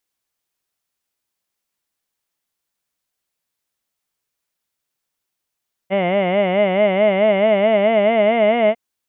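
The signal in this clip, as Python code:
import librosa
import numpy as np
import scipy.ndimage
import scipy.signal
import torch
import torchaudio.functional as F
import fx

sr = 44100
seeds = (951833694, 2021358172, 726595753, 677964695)

y = fx.formant_vowel(sr, seeds[0], length_s=2.85, hz=185.0, glide_st=3.5, vibrato_hz=4.6, vibrato_st=1.25, f1_hz=640.0, f2_hz=2100.0, f3_hz=2900.0)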